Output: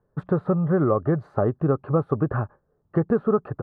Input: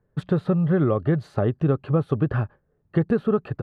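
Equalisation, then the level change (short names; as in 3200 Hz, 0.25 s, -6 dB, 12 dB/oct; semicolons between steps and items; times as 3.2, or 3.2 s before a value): EQ curve 140 Hz 0 dB, 1200 Hz +7 dB, 3100 Hz -15 dB; -2.5 dB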